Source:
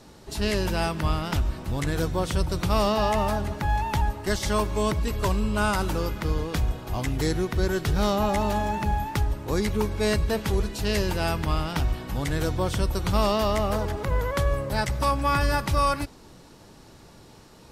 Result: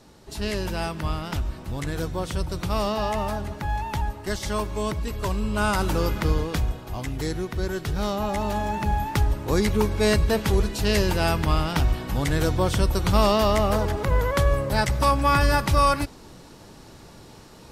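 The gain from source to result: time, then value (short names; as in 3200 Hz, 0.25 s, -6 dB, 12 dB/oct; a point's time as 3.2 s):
5.24 s -2.5 dB
6.18 s +5 dB
6.95 s -3 dB
8.21 s -3 dB
9.26 s +3.5 dB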